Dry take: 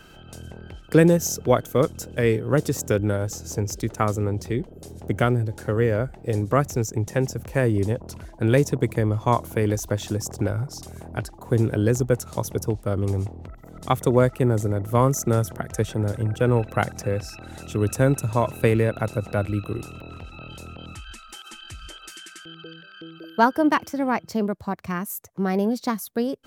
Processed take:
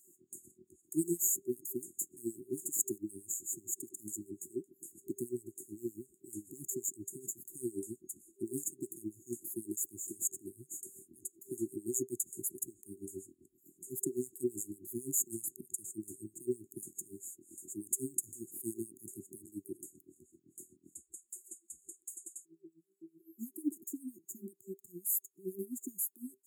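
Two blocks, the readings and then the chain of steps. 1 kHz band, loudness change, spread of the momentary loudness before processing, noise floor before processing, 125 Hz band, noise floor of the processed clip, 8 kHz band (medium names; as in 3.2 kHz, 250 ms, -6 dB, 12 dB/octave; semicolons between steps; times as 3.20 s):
under -40 dB, -15.5 dB, 19 LU, -46 dBFS, -31.5 dB, -75 dBFS, -2.0 dB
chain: LFO high-pass sine 7.8 Hz 600–2300 Hz; FFT band-reject 390–6600 Hz; trim +1 dB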